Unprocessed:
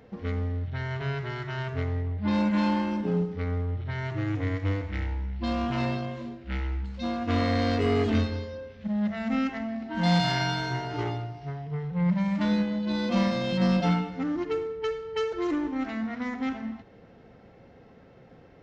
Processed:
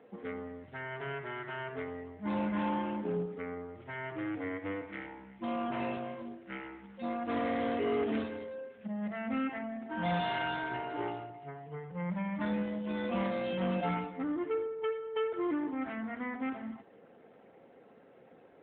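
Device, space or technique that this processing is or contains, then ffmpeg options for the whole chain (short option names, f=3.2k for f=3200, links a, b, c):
telephone: -filter_complex "[0:a]lowpass=f=6.2k:w=0.5412,lowpass=f=6.2k:w=1.3066,asettb=1/sr,asplit=3[a][b][c];[a]atrim=end=0.544[d];[b]atrim=start=0.54:end=1.05,asetpts=PTS-STARTPTS,afade=t=in:d=0.004:c=qsin,afade=t=out:st=0.506:d=0.004:c=qsin,equalizer=f=68:w=2:g=-3[e];[c]atrim=start=1.046[f];[d][e]acrossfade=d=0.004:c1=hsin:c2=qsin[g];[g][f]acrossfade=d=0.004:c1=qsin:c2=hsin,highpass=280,lowpass=3.1k,asoftclip=type=tanh:threshold=-21dB,volume=-2dB" -ar 8000 -c:a libopencore_amrnb -b:a 12200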